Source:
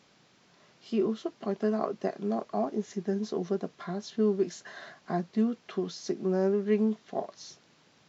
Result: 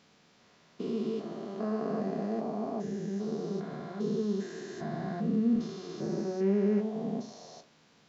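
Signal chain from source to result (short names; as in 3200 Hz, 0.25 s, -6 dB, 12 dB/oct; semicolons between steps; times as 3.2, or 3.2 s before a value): stepped spectrum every 0.4 s; 4.81–5.56 low shelf 330 Hz +7 dB; reverb RT60 0.30 s, pre-delay 4 ms, DRR 7 dB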